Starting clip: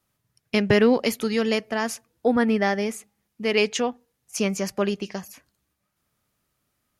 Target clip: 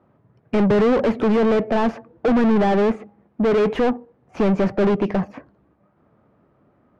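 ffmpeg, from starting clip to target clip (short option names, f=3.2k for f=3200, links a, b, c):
-filter_complex "[0:a]tiltshelf=f=800:g=7,asplit=2[a][b];[b]highpass=f=720:p=1,volume=38dB,asoftclip=type=tanh:threshold=-2.5dB[c];[a][c]amix=inputs=2:normalize=0,lowpass=f=1k:p=1,volume=-6dB,adynamicsmooth=sensitivity=0.5:basefreq=1.7k,volume=-6.5dB"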